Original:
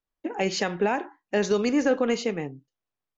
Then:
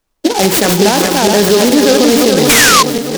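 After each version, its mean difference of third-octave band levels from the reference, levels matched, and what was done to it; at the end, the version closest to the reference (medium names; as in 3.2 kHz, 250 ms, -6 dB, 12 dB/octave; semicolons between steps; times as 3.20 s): 15.0 dB: backward echo that repeats 213 ms, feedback 66%, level -4.5 dB; painted sound fall, 2.49–2.83 s, 1–2.5 kHz -21 dBFS; loudness maximiser +20 dB; delay time shaken by noise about 4.2 kHz, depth 0.1 ms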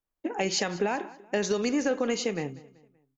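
3.0 dB: treble shelf 6.5 kHz +11.5 dB; compression 3:1, threshold -24 dBFS, peak gain reduction 5.5 dB; feedback delay 191 ms, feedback 42%, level -19.5 dB; tape noise reduction on one side only decoder only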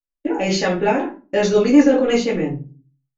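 4.5 dB: gate -43 dBFS, range -21 dB; in parallel at -1.5 dB: peak limiter -20 dBFS, peak gain reduction 7 dB; on the sum: rotary cabinet horn 5.5 Hz; simulated room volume 140 m³, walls furnished, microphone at 2.4 m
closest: second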